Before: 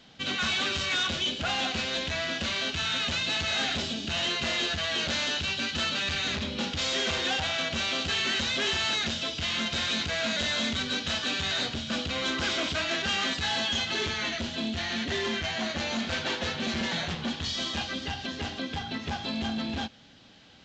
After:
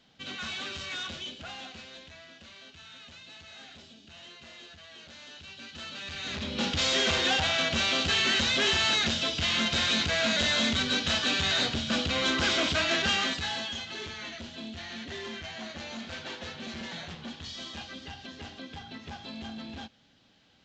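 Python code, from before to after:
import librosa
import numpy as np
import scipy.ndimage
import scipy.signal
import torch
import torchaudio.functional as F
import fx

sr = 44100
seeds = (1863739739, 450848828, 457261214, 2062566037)

y = fx.gain(x, sr, db=fx.line((1.08, -8.5), (2.31, -20.0), (5.14, -20.0), (6.14, -9.0), (6.67, 2.5), (13.07, 2.5), (13.83, -9.0)))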